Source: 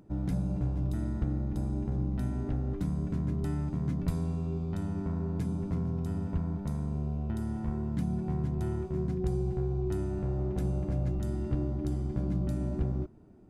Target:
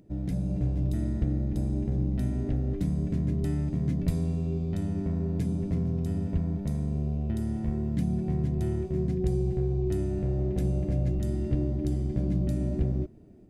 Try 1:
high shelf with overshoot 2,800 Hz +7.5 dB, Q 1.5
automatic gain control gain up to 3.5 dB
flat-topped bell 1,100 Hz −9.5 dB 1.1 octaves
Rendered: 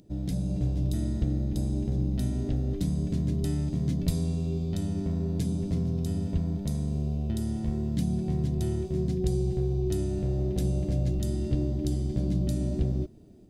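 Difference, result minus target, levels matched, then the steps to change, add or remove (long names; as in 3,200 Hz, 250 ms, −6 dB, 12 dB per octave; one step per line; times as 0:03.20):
4,000 Hz band +8.5 dB
remove: high shelf with overshoot 2,800 Hz +7.5 dB, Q 1.5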